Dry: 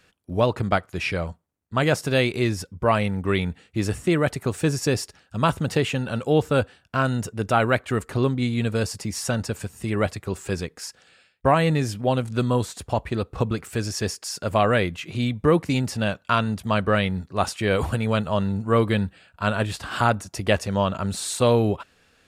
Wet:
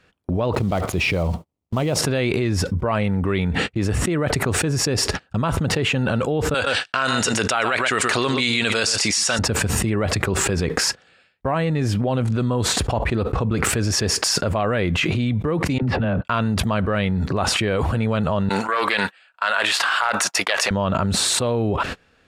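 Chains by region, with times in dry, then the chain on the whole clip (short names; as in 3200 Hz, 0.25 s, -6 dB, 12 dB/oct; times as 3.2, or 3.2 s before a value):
0.53–1.99 block floating point 5-bit + bell 1600 Hz -11.5 dB 0.7 oct
6.54–9.39 weighting filter ITU-R 468 + echo 0.124 s -14.5 dB
15.78–16.25 air absorption 430 m + compressor 2.5:1, threshold -41 dBFS + dispersion lows, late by 46 ms, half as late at 360 Hz
18.49–20.71 HPF 1100 Hz + Doppler distortion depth 0.12 ms
whole clip: LPF 2700 Hz 6 dB/oct; gate -45 dBFS, range -31 dB; fast leveller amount 100%; gain -6 dB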